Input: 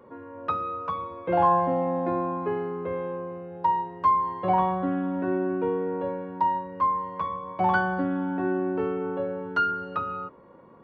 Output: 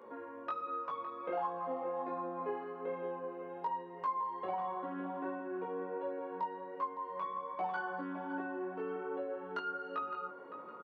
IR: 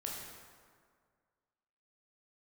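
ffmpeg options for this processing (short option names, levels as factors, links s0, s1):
-filter_complex "[0:a]highpass=330,acompressor=threshold=0.00794:ratio=2.5,flanger=delay=17.5:depth=3.4:speed=1.3,asplit=2[s0][s1];[s1]adelay=561,lowpass=f=1800:p=1,volume=0.355,asplit=2[s2][s3];[s3]adelay=561,lowpass=f=1800:p=1,volume=0.53,asplit=2[s4][s5];[s5]adelay=561,lowpass=f=1800:p=1,volume=0.53,asplit=2[s6][s7];[s7]adelay=561,lowpass=f=1800:p=1,volume=0.53,asplit=2[s8][s9];[s9]adelay=561,lowpass=f=1800:p=1,volume=0.53,asplit=2[s10][s11];[s11]adelay=561,lowpass=f=1800:p=1,volume=0.53[s12];[s0][s2][s4][s6][s8][s10][s12]amix=inputs=7:normalize=0,volume=1.41"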